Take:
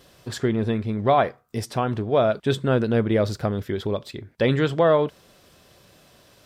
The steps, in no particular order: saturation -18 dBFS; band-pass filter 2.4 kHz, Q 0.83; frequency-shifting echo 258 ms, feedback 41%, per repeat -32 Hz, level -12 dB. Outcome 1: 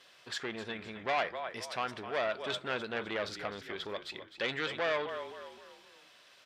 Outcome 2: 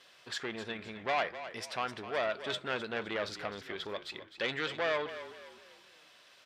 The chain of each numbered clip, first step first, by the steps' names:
frequency-shifting echo > saturation > band-pass filter; saturation > frequency-shifting echo > band-pass filter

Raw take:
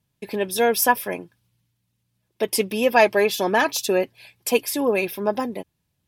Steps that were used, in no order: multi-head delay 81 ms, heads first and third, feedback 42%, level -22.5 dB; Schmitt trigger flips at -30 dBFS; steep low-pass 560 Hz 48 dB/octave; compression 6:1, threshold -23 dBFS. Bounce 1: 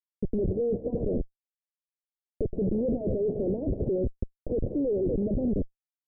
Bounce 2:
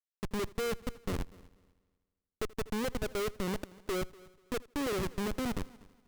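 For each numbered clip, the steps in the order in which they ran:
multi-head delay > Schmitt trigger > compression > steep low-pass; compression > steep low-pass > Schmitt trigger > multi-head delay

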